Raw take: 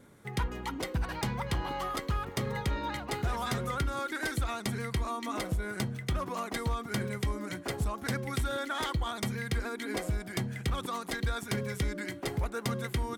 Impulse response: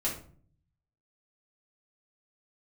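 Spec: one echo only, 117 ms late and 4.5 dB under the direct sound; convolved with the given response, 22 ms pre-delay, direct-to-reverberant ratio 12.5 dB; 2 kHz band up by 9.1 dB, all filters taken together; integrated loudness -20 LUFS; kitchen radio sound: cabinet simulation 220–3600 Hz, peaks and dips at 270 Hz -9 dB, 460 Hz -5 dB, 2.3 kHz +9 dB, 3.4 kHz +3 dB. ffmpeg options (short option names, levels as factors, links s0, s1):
-filter_complex "[0:a]equalizer=f=2000:t=o:g=6.5,aecho=1:1:117:0.596,asplit=2[s0][s1];[1:a]atrim=start_sample=2205,adelay=22[s2];[s1][s2]afir=irnorm=-1:irlink=0,volume=0.126[s3];[s0][s3]amix=inputs=2:normalize=0,highpass=220,equalizer=f=270:t=q:w=4:g=-9,equalizer=f=460:t=q:w=4:g=-5,equalizer=f=2300:t=q:w=4:g=9,equalizer=f=3400:t=q:w=4:g=3,lowpass=f=3600:w=0.5412,lowpass=f=3600:w=1.3066,volume=3.35"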